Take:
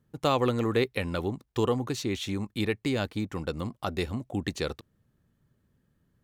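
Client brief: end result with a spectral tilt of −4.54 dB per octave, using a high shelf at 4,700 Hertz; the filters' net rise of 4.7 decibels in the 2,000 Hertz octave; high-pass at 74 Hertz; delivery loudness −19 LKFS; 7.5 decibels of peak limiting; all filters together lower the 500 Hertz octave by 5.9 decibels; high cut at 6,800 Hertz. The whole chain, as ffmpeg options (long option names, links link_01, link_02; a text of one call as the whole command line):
ffmpeg -i in.wav -af "highpass=74,lowpass=6800,equalizer=frequency=500:width_type=o:gain=-7.5,equalizer=frequency=2000:width_type=o:gain=7,highshelf=frequency=4700:gain=-4.5,volume=14.5dB,alimiter=limit=-4.5dB:level=0:latency=1" out.wav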